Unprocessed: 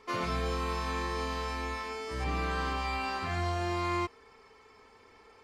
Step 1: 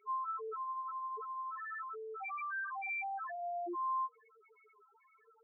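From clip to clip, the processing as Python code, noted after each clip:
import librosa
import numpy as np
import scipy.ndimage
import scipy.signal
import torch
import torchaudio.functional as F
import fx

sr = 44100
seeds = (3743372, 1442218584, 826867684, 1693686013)

y = fx.highpass(x, sr, hz=260.0, slope=6)
y = fx.tilt_shelf(y, sr, db=-3.0, hz=820.0)
y = fx.spec_topn(y, sr, count=1)
y = y * librosa.db_to_amplitude(5.0)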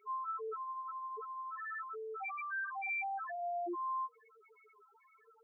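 y = fx.dynamic_eq(x, sr, hz=1100.0, q=3.2, threshold_db=-48.0, ratio=4.0, max_db=-4)
y = y * librosa.db_to_amplitude(1.5)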